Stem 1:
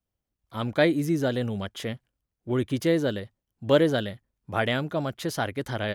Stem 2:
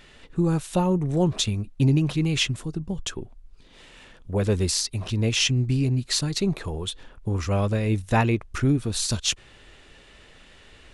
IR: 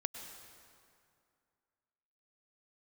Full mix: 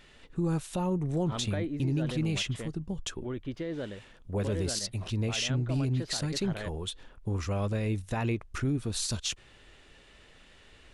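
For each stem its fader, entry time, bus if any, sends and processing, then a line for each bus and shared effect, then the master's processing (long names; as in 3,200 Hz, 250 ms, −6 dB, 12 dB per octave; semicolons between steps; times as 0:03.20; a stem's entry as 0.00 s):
+3.0 dB, 0.75 s, no send, low-pass filter 3,300 Hz 12 dB per octave; brickwall limiter −18.5 dBFS, peak gain reduction 10.5 dB; automatic ducking −12 dB, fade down 1.80 s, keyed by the second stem
−5.5 dB, 0.00 s, no send, no processing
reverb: not used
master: brickwall limiter −21.5 dBFS, peak gain reduction 9 dB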